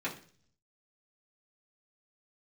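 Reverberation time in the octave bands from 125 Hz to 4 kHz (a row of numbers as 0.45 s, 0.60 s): 0.95 s, 0.65 s, 0.50 s, 0.40 s, 0.45 s, 0.55 s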